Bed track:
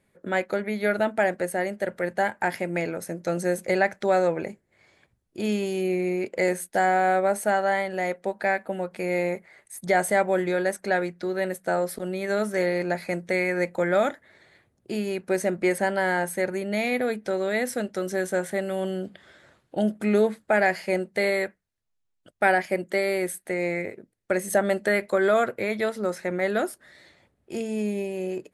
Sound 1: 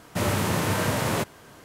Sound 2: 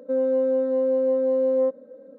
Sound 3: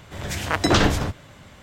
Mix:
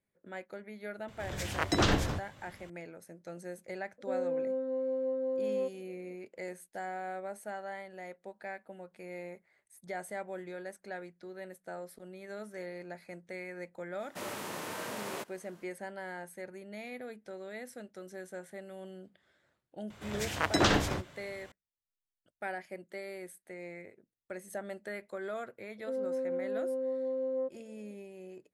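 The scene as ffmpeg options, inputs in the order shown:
ffmpeg -i bed.wav -i cue0.wav -i cue1.wav -i cue2.wav -filter_complex "[3:a]asplit=2[link_01][link_02];[2:a]asplit=2[link_03][link_04];[0:a]volume=-18dB[link_05];[1:a]highpass=290[link_06];[link_02]lowshelf=frequency=110:gain=-7.5[link_07];[link_01]atrim=end=1.62,asetpts=PTS-STARTPTS,volume=-9dB,afade=type=in:duration=0.004:curve=hsin,afade=type=out:start_time=1.616:duration=0.004:curve=hsin,adelay=1080[link_08];[link_03]atrim=end=2.18,asetpts=PTS-STARTPTS,volume=-11.5dB,afade=type=in:duration=0.004:curve=hsin,afade=type=out:start_time=2.176:duration=0.004:curve=hsin,adelay=3980[link_09];[link_06]atrim=end=1.64,asetpts=PTS-STARTPTS,volume=-12.5dB,afade=type=in:duration=0.004:curve=hsin,afade=type=out:start_time=1.636:duration=0.004:curve=hsin,adelay=14000[link_10];[link_07]atrim=end=1.62,asetpts=PTS-STARTPTS,volume=-7dB,afade=type=in:duration=0.004:curve=hsin,afade=type=out:start_time=1.616:duration=0.004:curve=hsin,adelay=19900[link_11];[link_04]atrim=end=2.18,asetpts=PTS-STARTPTS,volume=-12.5dB,afade=type=in:duration=0.004:curve=hsin,afade=type=out:start_time=2.176:duration=0.004:curve=hsin,adelay=25780[link_12];[link_05][link_08][link_09][link_10][link_11][link_12]amix=inputs=6:normalize=0" out.wav

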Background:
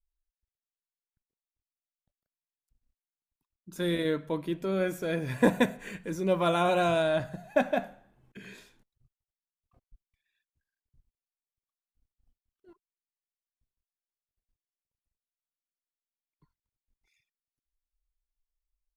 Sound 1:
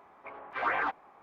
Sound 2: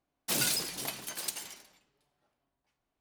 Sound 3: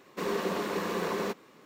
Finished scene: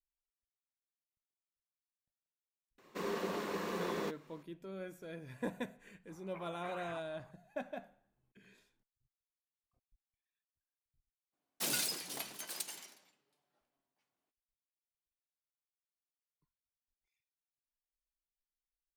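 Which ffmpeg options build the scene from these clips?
ffmpeg -i bed.wav -i cue0.wav -i cue1.wav -i cue2.wav -filter_complex "[0:a]volume=-16.5dB[link_01];[1:a]acompressor=threshold=-38dB:ratio=6:attack=3.2:release=140:knee=1:detection=peak[link_02];[2:a]highpass=170[link_03];[3:a]atrim=end=1.65,asetpts=PTS-STARTPTS,volume=-7dB,afade=type=in:duration=0.004:curve=hsin,afade=type=out:start_time=1.646:duration=0.004:curve=hsin,adelay=2780[link_04];[link_02]atrim=end=1.22,asetpts=PTS-STARTPTS,volume=-8dB,afade=type=in:duration=0.004:curve=hsin,afade=type=out:start_time=1.216:duration=0.004:curve=hsin,adelay=6090[link_05];[link_03]atrim=end=3,asetpts=PTS-STARTPTS,volume=-5.5dB,afade=type=in:duration=0.02,afade=type=out:start_time=2.98:duration=0.02,adelay=11320[link_06];[link_01][link_04][link_05][link_06]amix=inputs=4:normalize=0" out.wav

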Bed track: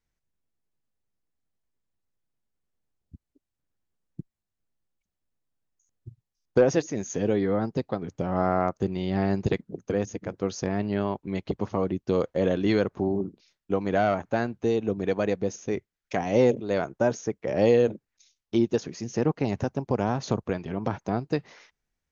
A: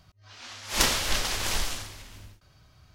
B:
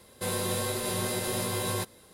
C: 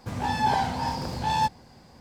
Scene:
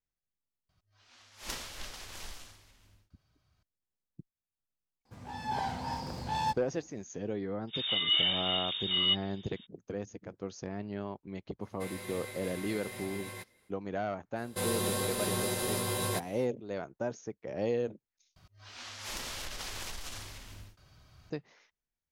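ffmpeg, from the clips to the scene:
ffmpeg -i bed.wav -i cue0.wav -i cue1.wav -i cue2.wav -filter_complex "[1:a]asplit=2[link_01][link_02];[3:a]asplit=2[link_03][link_04];[2:a]asplit=2[link_05][link_06];[0:a]volume=-11.5dB[link_07];[link_03]dynaudnorm=framelen=130:gausssize=7:maxgain=10.5dB[link_08];[link_04]lowpass=frequency=3200:width_type=q:width=0.5098,lowpass=frequency=3200:width_type=q:width=0.6013,lowpass=frequency=3200:width_type=q:width=0.9,lowpass=frequency=3200:width_type=q:width=2.563,afreqshift=-3800[link_09];[link_05]equalizer=frequency=2100:width_type=o:width=0.48:gain=13.5[link_10];[link_02]acompressor=threshold=-38dB:ratio=12:attack=17:release=55:knee=6:detection=peak[link_11];[link_07]asplit=2[link_12][link_13];[link_12]atrim=end=18.364[link_14];[link_11]atrim=end=2.94,asetpts=PTS-STARTPTS,volume=-2dB[link_15];[link_13]atrim=start=21.296[link_16];[link_01]atrim=end=2.94,asetpts=PTS-STARTPTS,volume=-16.5dB,afade=type=in:duration=0.004:curve=hsin,afade=type=out:start_time=2.936:duration=0.004:curve=hsin,adelay=690[link_17];[link_08]atrim=end=2,asetpts=PTS-STARTPTS,volume=-17dB,afade=type=in:duration=0.004:curve=hsin,afade=type=out:start_time=1.996:duration=0.004:curve=hsin,adelay=222705S[link_18];[link_09]atrim=end=2,asetpts=PTS-STARTPTS,volume=-4dB,afade=type=in:duration=0.02,afade=type=out:start_time=1.98:duration=0.02,adelay=7670[link_19];[link_10]atrim=end=2.13,asetpts=PTS-STARTPTS,volume=-15dB,afade=type=in:duration=0.05,afade=type=out:start_time=2.08:duration=0.05,adelay=11590[link_20];[link_06]atrim=end=2.13,asetpts=PTS-STARTPTS,volume=-2dB,afade=type=in:duration=0.05,afade=type=out:start_time=2.08:duration=0.05,adelay=14350[link_21];[link_14][link_15]acrossfade=duration=0.004:curve1=hsin:curve2=hsin[link_22];[link_22][link_16]acrossfade=duration=0.004:curve1=hsin:curve2=hsin[link_23];[link_23][link_17][link_18][link_19][link_20][link_21]amix=inputs=6:normalize=0" out.wav

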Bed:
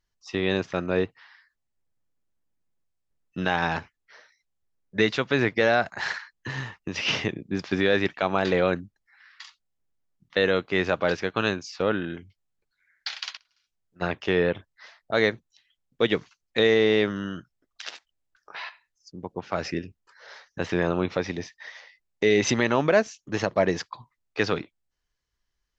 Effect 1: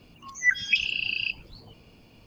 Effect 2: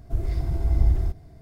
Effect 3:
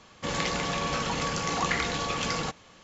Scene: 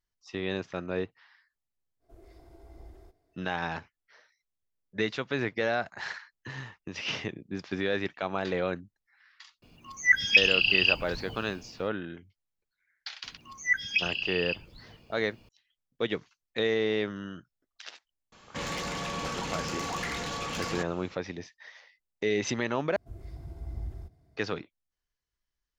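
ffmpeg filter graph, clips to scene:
ffmpeg -i bed.wav -i cue0.wav -i cue1.wav -i cue2.wav -filter_complex "[2:a]asplit=2[link_01][link_02];[1:a]asplit=2[link_03][link_04];[0:a]volume=-7.5dB[link_05];[link_01]lowshelf=frequency=250:width_type=q:width=1.5:gain=-13[link_06];[link_03]dynaudnorm=framelen=210:gausssize=5:maxgain=11.5dB[link_07];[3:a]asoftclip=type=tanh:threshold=-27dB[link_08];[link_02]highpass=51[link_09];[link_05]asplit=2[link_10][link_11];[link_10]atrim=end=22.964[link_12];[link_09]atrim=end=1.41,asetpts=PTS-STARTPTS,volume=-15dB[link_13];[link_11]atrim=start=24.366[link_14];[link_06]atrim=end=1.41,asetpts=PTS-STARTPTS,volume=-17.5dB,afade=type=in:duration=0.05,afade=type=out:start_time=1.36:duration=0.05,adelay=1990[link_15];[link_07]atrim=end=2.26,asetpts=PTS-STARTPTS,volume=-3.5dB,afade=type=in:duration=0.004:curve=hsin,afade=type=out:start_time=2.256:duration=0.004:curve=hsin,adelay=424242S[link_16];[link_04]atrim=end=2.26,asetpts=PTS-STARTPTS,volume=-4dB,afade=type=in:duration=0.004:curve=hsin,afade=type=out:start_time=2.256:duration=0.004:curve=hsin,adelay=13230[link_17];[link_08]atrim=end=2.83,asetpts=PTS-STARTPTS,volume=-2dB,afade=type=in:duration=0.004:curve=hsin,afade=type=out:start_time=2.826:duration=0.004:curve=hsin,adelay=18320[link_18];[link_12][link_13]acrossfade=duration=0.004:curve1=hsin:curve2=hsin[link_19];[link_19][link_14]acrossfade=duration=0.004:curve1=hsin:curve2=hsin[link_20];[link_20][link_15][link_16][link_17][link_18]amix=inputs=5:normalize=0" out.wav

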